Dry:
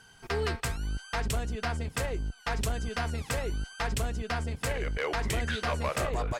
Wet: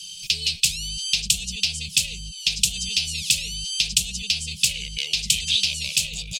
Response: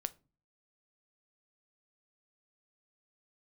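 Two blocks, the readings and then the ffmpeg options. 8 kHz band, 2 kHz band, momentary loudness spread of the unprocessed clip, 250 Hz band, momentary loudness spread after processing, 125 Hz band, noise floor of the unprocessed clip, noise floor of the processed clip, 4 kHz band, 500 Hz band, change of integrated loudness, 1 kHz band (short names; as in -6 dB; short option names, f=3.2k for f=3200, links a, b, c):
+18.5 dB, +5.0 dB, 4 LU, -4.0 dB, 4 LU, -4.5 dB, -55 dBFS, -38 dBFS, +19.5 dB, under -20 dB, +10.5 dB, under -25 dB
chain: -af "acompressor=threshold=-32dB:ratio=6,aexciter=amount=7.2:drive=7.5:freq=2.7k,firequalizer=gain_entry='entry(120,0);entry(180,12);entry(260,-19);entry(450,-12);entry(1200,-28);entry(2500,9);entry(12000,-4)':delay=0.05:min_phase=1,volume=-2dB"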